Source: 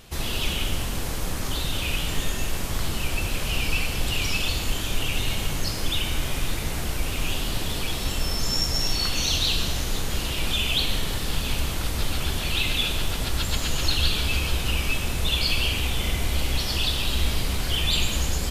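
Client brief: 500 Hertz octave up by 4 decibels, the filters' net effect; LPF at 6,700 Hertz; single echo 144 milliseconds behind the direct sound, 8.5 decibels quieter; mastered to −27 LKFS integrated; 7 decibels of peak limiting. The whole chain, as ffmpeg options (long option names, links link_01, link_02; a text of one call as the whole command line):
ffmpeg -i in.wav -af "lowpass=6700,equalizer=frequency=500:width_type=o:gain=5,alimiter=limit=-15.5dB:level=0:latency=1,aecho=1:1:144:0.376,volume=-0.5dB" out.wav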